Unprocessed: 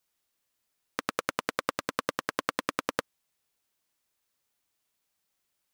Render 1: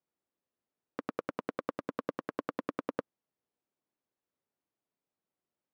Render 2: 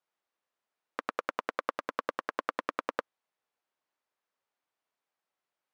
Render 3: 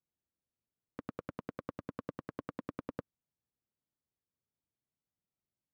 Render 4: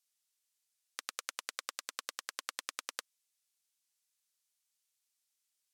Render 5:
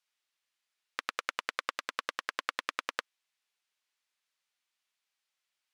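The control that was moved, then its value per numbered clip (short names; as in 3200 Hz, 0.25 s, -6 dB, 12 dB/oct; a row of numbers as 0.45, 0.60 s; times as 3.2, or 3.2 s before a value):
band-pass, frequency: 300, 820, 110, 7600, 2600 Hz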